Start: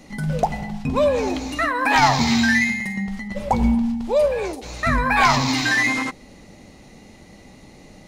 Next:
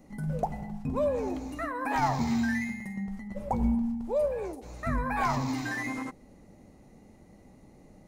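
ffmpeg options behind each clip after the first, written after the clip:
-af "equalizer=f=3.6k:t=o:w=2.2:g=-14,volume=-8dB"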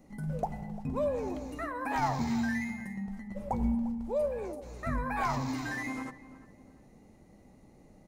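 -filter_complex "[0:a]asplit=2[a][b];[b]adelay=349,lowpass=f=1.9k:p=1,volume=-16dB,asplit=2[c][d];[d]adelay=349,lowpass=f=1.9k:p=1,volume=0.36,asplit=2[e][f];[f]adelay=349,lowpass=f=1.9k:p=1,volume=0.36[g];[a][c][e][g]amix=inputs=4:normalize=0,volume=-3dB"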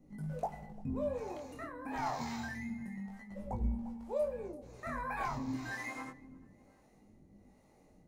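-filter_complex "[0:a]flanger=delay=19.5:depth=6.5:speed=0.28,acrossover=split=420[a][b];[a]aeval=exprs='val(0)*(1-0.7/2+0.7/2*cos(2*PI*1.1*n/s))':c=same[c];[b]aeval=exprs='val(0)*(1-0.7/2-0.7/2*cos(2*PI*1.1*n/s))':c=same[d];[c][d]amix=inputs=2:normalize=0,volume=1dB"

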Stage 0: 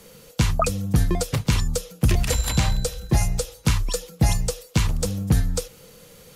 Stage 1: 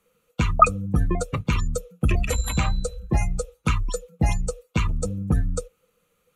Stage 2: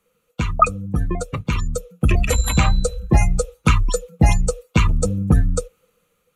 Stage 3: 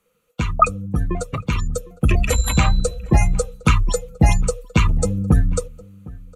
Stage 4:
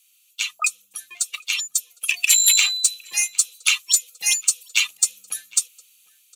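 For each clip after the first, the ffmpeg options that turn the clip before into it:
-af "afftdn=nr=21:nf=-29,equalizer=f=125:t=o:w=0.33:g=-7,equalizer=f=1.25k:t=o:w=0.33:g=12,equalizer=f=2.5k:t=o:w=0.33:g=7,equalizer=f=5k:t=o:w=0.33:g=-11,volume=-1dB"
-af "dynaudnorm=f=470:g=5:m=9.5dB"
-filter_complex "[0:a]asplit=2[a][b];[b]adelay=758,volume=-21dB,highshelf=f=4k:g=-17.1[c];[a][c]amix=inputs=2:normalize=0"
-af "highpass=f=2.3k:t=q:w=2.8,aexciter=amount=4.5:drive=9.4:freq=3k,volume=-7dB"

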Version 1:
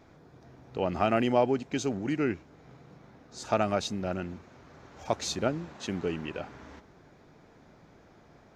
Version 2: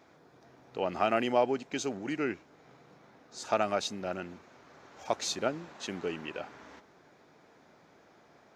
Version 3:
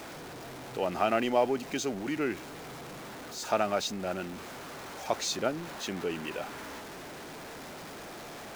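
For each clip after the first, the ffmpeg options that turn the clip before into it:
-af "highpass=f=410:p=1"
-af "aeval=exprs='val(0)+0.5*0.0112*sgn(val(0))':c=same"

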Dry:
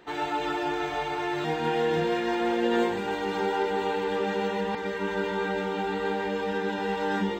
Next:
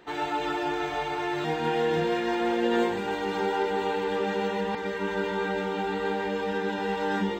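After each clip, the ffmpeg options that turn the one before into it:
-af anull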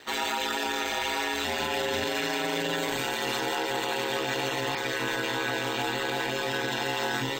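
-af "aeval=exprs='val(0)*sin(2*PI*70*n/s)':c=same,crystalizer=i=9.5:c=0,alimiter=limit=-19dB:level=0:latency=1:release=24"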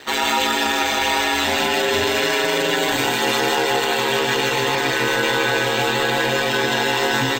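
-af "aecho=1:1:155:0.562,volume=9dB"

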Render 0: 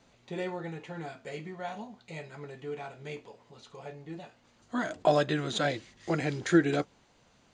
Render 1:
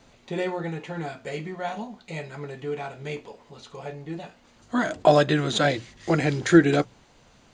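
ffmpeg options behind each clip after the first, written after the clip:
-af "lowshelf=f=75:g=7,bandreject=f=60:t=h:w=6,bandreject=f=120:t=h:w=6,bandreject=f=180:t=h:w=6,volume=7dB"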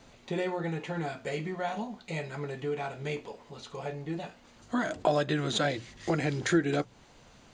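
-af "acompressor=threshold=-30dB:ratio=2"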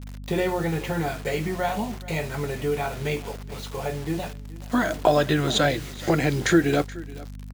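-af "acrusher=bits=7:mix=0:aa=0.000001,aeval=exprs='val(0)+0.00708*(sin(2*PI*50*n/s)+sin(2*PI*2*50*n/s)/2+sin(2*PI*3*50*n/s)/3+sin(2*PI*4*50*n/s)/4+sin(2*PI*5*50*n/s)/5)':c=same,aecho=1:1:427:0.106,volume=7dB"

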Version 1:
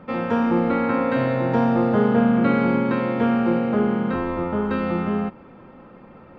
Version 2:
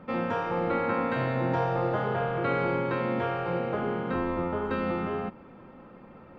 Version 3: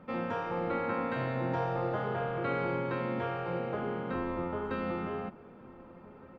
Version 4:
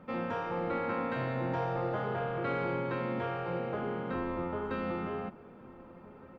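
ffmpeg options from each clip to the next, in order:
-af "afftfilt=real='re*lt(hypot(re,im),0.631)':imag='im*lt(hypot(re,im),0.631)':win_size=1024:overlap=0.75,volume=-4dB"
-filter_complex "[0:a]asplit=2[a][b];[b]adelay=1516,volume=-19dB,highshelf=f=4k:g=-34.1[c];[a][c]amix=inputs=2:normalize=0,volume=-5dB"
-af "asoftclip=type=tanh:threshold=-22dB"

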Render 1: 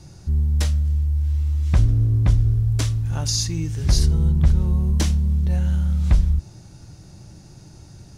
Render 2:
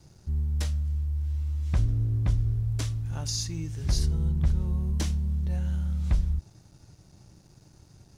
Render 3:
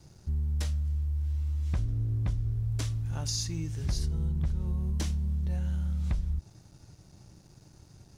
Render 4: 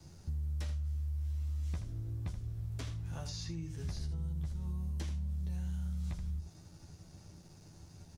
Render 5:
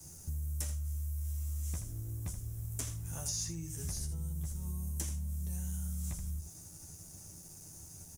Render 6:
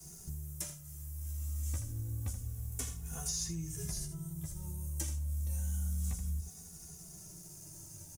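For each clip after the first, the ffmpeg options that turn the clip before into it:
-af "aeval=exprs='sgn(val(0))*max(abs(val(0))-0.00266,0)':c=same,volume=-8dB"
-af "acompressor=threshold=-27dB:ratio=3"
-filter_complex "[0:a]aecho=1:1:12|78:0.631|0.335,acrossover=split=98|4200[a][b][c];[a]acompressor=threshold=-39dB:ratio=4[d];[b]acompressor=threshold=-40dB:ratio=4[e];[c]acompressor=threshold=-57dB:ratio=4[f];[d][e][f]amix=inputs=3:normalize=0,volume=-2dB"
-af "aexciter=amount=12:drive=3.7:freq=6.2k,volume=-1dB"
-filter_complex "[0:a]asplit=2[a][b];[b]adelay=2.4,afreqshift=-0.29[c];[a][c]amix=inputs=2:normalize=1,volume=3.5dB"

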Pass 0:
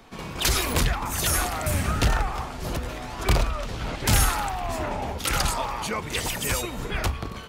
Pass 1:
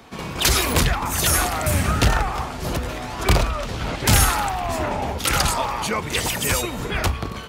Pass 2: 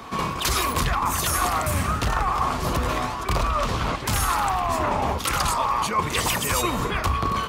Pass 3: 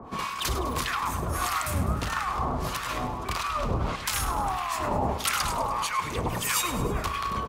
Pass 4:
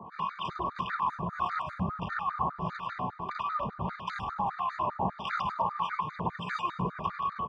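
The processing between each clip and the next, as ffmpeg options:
-af "highpass=45,volume=5dB"
-af "equalizer=f=1.1k:t=o:w=0.31:g=11.5,areverse,acompressor=threshold=-24dB:ratio=10,areverse,volume=4.5dB"
-filter_complex "[0:a]acrossover=split=1000[a][b];[a]aeval=exprs='val(0)*(1-1/2+1/2*cos(2*PI*1.6*n/s))':c=same[c];[b]aeval=exprs='val(0)*(1-1/2-1/2*cos(2*PI*1.6*n/s))':c=same[d];[c][d]amix=inputs=2:normalize=0,aecho=1:1:102|204|306|408|510|612:0.237|0.135|0.077|0.0439|0.025|0.0143"
-af "highpass=110,equalizer=f=180:t=q:w=4:g=10,equalizer=f=280:t=q:w=4:g=-10,equalizer=f=490:t=q:w=4:g=-4,equalizer=f=1k:t=q:w=4:g=7,equalizer=f=2.3k:t=q:w=4:g=-9,lowpass=f=2.6k:w=0.5412,lowpass=f=2.6k:w=1.3066,crystalizer=i=3:c=0,afftfilt=real='re*gt(sin(2*PI*5*pts/sr)*(1-2*mod(floor(b*sr/1024/1200),2)),0)':imag='im*gt(sin(2*PI*5*pts/sr)*(1-2*mod(floor(b*sr/1024/1200),2)),0)':win_size=1024:overlap=0.75,volume=-3.5dB"

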